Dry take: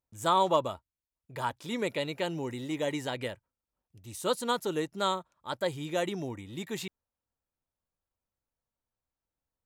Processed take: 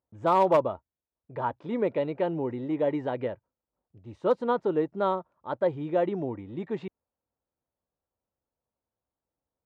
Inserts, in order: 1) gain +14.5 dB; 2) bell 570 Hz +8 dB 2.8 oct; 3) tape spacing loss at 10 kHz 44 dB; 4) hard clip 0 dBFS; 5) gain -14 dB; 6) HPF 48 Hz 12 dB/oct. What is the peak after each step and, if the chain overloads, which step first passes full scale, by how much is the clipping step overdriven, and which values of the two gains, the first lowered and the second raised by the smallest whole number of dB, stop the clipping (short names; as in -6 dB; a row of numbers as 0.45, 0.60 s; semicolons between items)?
+2.5, +9.0, +5.5, 0.0, -14.0, -13.0 dBFS; step 1, 5.5 dB; step 1 +8.5 dB, step 5 -8 dB